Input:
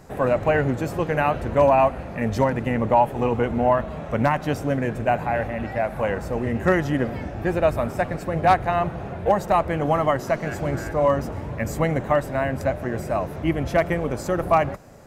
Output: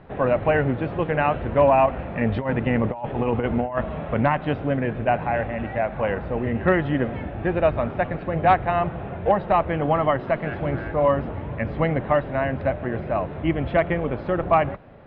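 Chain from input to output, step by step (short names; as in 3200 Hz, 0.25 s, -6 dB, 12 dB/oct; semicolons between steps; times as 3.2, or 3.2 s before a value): hard clip -7.5 dBFS, distortion -44 dB; steep low-pass 3600 Hz 48 dB/oct; 1.86–4.22 negative-ratio compressor -22 dBFS, ratio -0.5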